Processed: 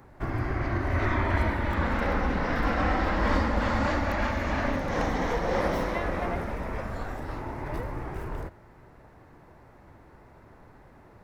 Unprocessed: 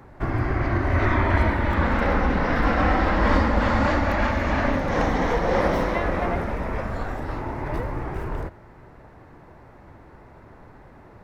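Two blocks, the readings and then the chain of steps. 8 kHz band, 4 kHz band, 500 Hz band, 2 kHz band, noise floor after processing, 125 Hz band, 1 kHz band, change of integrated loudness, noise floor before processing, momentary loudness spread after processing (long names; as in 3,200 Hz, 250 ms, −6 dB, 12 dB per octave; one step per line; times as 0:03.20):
can't be measured, −3.5 dB, −5.5 dB, −5.0 dB, −53 dBFS, −5.5 dB, −5.5 dB, −5.5 dB, −48 dBFS, 10 LU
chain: high-shelf EQ 5,800 Hz +7 dB
level −5.5 dB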